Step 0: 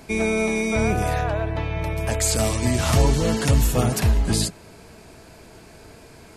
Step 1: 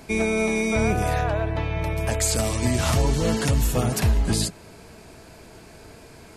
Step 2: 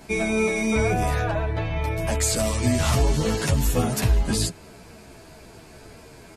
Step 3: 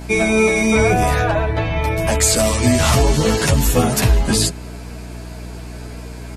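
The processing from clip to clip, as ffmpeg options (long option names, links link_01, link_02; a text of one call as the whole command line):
ffmpeg -i in.wav -af "alimiter=limit=-11.5dB:level=0:latency=1:release=250" out.wav
ffmpeg -i in.wav -filter_complex "[0:a]asplit=2[link_01][link_02];[link_02]adelay=10.7,afreqshift=-2.8[link_03];[link_01][link_03]amix=inputs=2:normalize=1,volume=3dB" out.wav
ffmpeg -i in.wav -af "lowshelf=frequency=180:gain=-4,aeval=exprs='val(0)+0.0112*(sin(2*PI*60*n/s)+sin(2*PI*2*60*n/s)/2+sin(2*PI*3*60*n/s)/3+sin(2*PI*4*60*n/s)/4+sin(2*PI*5*60*n/s)/5)':channel_layout=same,volume=8.5dB" out.wav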